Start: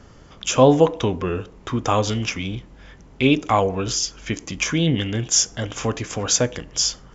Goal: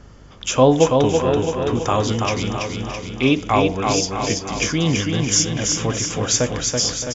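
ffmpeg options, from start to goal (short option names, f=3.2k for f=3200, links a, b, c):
-filter_complex "[0:a]asplit=2[a][b];[b]aecho=0:1:331|662|993|1324|1655|1986|2317|2648:0.631|0.366|0.212|0.123|0.0714|0.0414|0.024|0.0139[c];[a][c]amix=inputs=2:normalize=0,aeval=exprs='val(0)+0.00501*(sin(2*PI*50*n/s)+sin(2*PI*2*50*n/s)/2+sin(2*PI*3*50*n/s)/3+sin(2*PI*4*50*n/s)/4+sin(2*PI*5*50*n/s)/5)':c=same,asplit=2[d][e];[e]aecho=0:1:618:0.2[f];[d][f]amix=inputs=2:normalize=0"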